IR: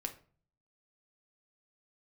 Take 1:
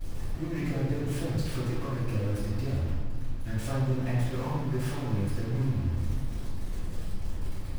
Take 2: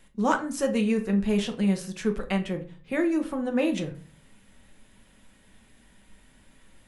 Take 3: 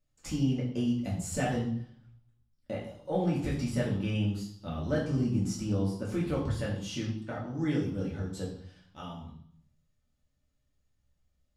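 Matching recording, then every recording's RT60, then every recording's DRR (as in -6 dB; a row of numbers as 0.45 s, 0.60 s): 2; 1.6 s, 0.45 s, 0.65 s; -15.0 dB, 4.0 dB, -5.5 dB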